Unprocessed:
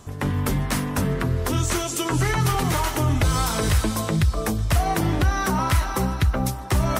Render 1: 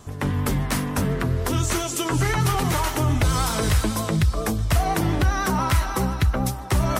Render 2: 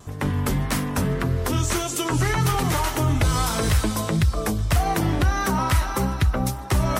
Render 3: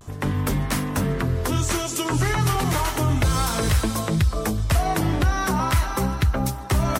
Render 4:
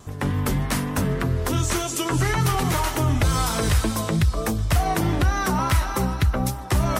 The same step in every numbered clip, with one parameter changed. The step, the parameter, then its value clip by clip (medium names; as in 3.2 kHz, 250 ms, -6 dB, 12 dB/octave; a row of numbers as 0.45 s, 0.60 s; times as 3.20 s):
vibrato, rate: 10 Hz, 1.7 Hz, 0.35 Hz, 3.4 Hz